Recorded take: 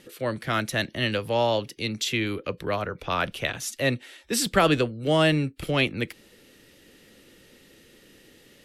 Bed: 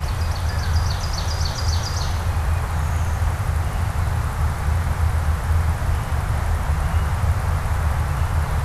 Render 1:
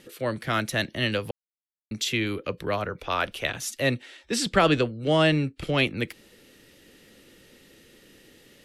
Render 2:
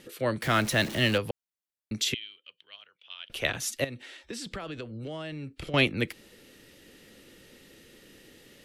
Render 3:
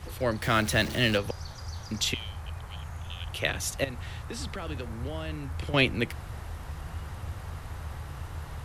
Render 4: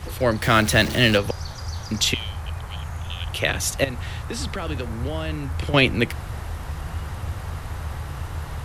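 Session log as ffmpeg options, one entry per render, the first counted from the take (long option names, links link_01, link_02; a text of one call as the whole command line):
ffmpeg -i in.wav -filter_complex "[0:a]asettb=1/sr,asplit=3[link_01][link_02][link_03];[link_01]atrim=end=2.994[link_04];[link_02]atrim=start=2.99:end=3.45,asetpts=PTS-STARTPTS,afade=type=in:duration=0.004:curve=qsin,afade=type=out:start_time=0.456:duration=0.004:curve=qsin,equalizer=frequency=150:width=1.5:gain=-10.5[link_05];[link_03]atrim=start=3.446[link_06];[link_04][link_05]acrossfade=duration=0.004:curve1=hsin:curve2=qsin[link_07];[link_07][link_06]acrossfade=duration=0.004:curve1=qsin:curve2=hsin,asettb=1/sr,asplit=3[link_08][link_09][link_10];[link_08]atrim=end=4.024[link_11];[link_09]atrim=start=4.02:end=5.78,asetpts=PTS-STARTPTS,afade=type=in:duration=0.004:curve=qsin,afade=type=out:start_time=1.756:duration=0.004:curve=qsin,lowpass=7400[link_12];[link_10]atrim=start=5.776[link_13];[link_11][link_12]acrossfade=duration=0.004:curve1=hsin:curve2=qsin[link_14];[link_14][link_13]acrossfade=duration=0.004:curve1=qsin:curve2=hsin,asplit=3[link_15][link_16][link_17];[link_15]atrim=end=1.31,asetpts=PTS-STARTPTS,afade=type=out:start_time=1.306:duration=0.004:curve=hsin[link_18];[link_16]atrim=start=1.31:end=1.91,asetpts=PTS-STARTPTS,volume=0[link_19];[link_17]atrim=start=1.91,asetpts=PTS-STARTPTS,afade=type=in:duration=0.004:curve=hsin[link_20];[link_18][link_19][link_20]concat=n=3:v=0:a=1" out.wav
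ffmpeg -i in.wav -filter_complex "[0:a]asettb=1/sr,asplit=3[link_01][link_02][link_03];[link_01]atrim=end=0.424[link_04];[link_02]atrim=start=0.42:end=1.18,asetpts=PTS-STARTPTS,afade=type=in:duration=0.004:curve=qsin,afade=type=out:start_time=0.756:duration=0.004:curve=qsin,aeval=exprs='val(0)+0.5*0.0224*sgn(val(0))':channel_layout=same[link_05];[link_03]atrim=start=1.176[link_06];[link_04][link_05]acrossfade=duration=0.004:curve1=hsin:curve2=qsin[link_07];[link_07][link_06]acrossfade=duration=0.004:curve1=qsin:curve2=hsin,asettb=1/sr,asplit=3[link_08][link_09][link_10];[link_08]atrim=end=2.144[link_11];[link_09]atrim=start=2.14:end=3.3,asetpts=PTS-STARTPTS,afade=type=in:duration=0.004:curve=qsin,afade=type=out:start_time=1.156:duration=0.004:curve=qsin,bandpass=frequency=3100:width_type=q:width=12[link_12];[link_10]atrim=start=3.296[link_13];[link_11][link_12]acrossfade=duration=0.004:curve1=hsin:curve2=qsin[link_14];[link_14][link_13]acrossfade=duration=0.004:curve1=qsin:curve2=hsin,asettb=1/sr,asplit=3[link_15][link_16][link_17];[link_15]atrim=end=3.844[link_18];[link_16]atrim=start=3.84:end=5.74,asetpts=PTS-STARTPTS,afade=type=in:duration=0.004:curve=qsin,afade=type=out:start_time=1.896:duration=0.004:curve=qsin,acompressor=threshold=-34dB:ratio=12:attack=3.2:release=140:knee=1:detection=peak[link_19];[link_17]atrim=start=5.736[link_20];[link_18][link_19]acrossfade=duration=0.004:curve1=hsin:curve2=qsin[link_21];[link_21][link_20]acrossfade=duration=0.004:curve1=qsin:curve2=hsin" out.wav
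ffmpeg -i in.wav -i bed.wav -filter_complex "[1:a]volume=-17.5dB[link_01];[0:a][link_01]amix=inputs=2:normalize=0" out.wav
ffmpeg -i in.wav -af "volume=7.5dB,alimiter=limit=-3dB:level=0:latency=1" out.wav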